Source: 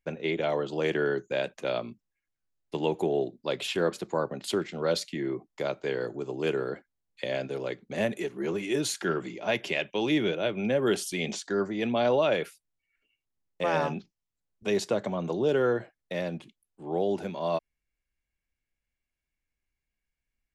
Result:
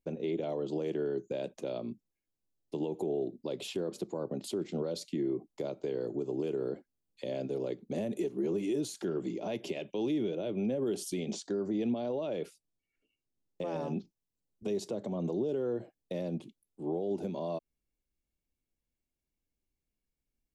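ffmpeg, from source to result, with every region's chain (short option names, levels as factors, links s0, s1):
-filter_complex "[0:a]asettb=1/sr,asplit=3[s0][s1][s2];[s0]atrim=end=11.234[s3];[s1]atrim=start=11.23:end=13.76,asetpts=PTS-STARTPTS,afade=t=in:d=0.004:c=qsin,afade=t=out:st=2.526:d=0.004:c=qsin,lowpass=8600,acompressor=threshold=0.0316:ratio=6:attack=3.2:release=140:knee=1:detection=peak[s4];[s2]atrim=start=13.756[s5];[s3][s4]acrossfade=d=0.004:c1=hsin:c2=qsin[s6];[s6][s5]acrossfade=d=0.004:c1=qsin:c2=hsin,equalizer=f=1700:t=o:w=1.4:g=-12,alimiter=level_in=1.78:limit=0.0631:level=0:latency=1:release=138,volume=0.562,equalizer=f=300:t=o:w=2:g=7.5,volume=0.794"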